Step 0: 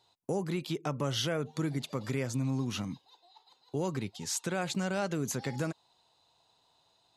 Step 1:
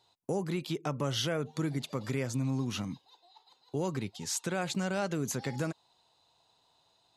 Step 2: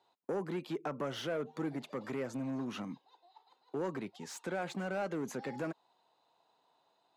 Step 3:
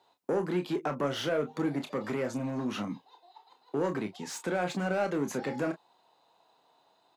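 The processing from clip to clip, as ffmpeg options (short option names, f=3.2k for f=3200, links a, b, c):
-af anull
-filter_complex "[0:a]lowshelf=f=67:g=-10.5,volume=29dB,asoftclip=hard,volume=-29dB,acrossover=split=180 2300:gain=0.112 1 0.224[a][b][c];[a][b][c]amix=inputs=3:normalize=0"
-af "aecho=1:1:28|39:0.376|0.178,volume=6dB"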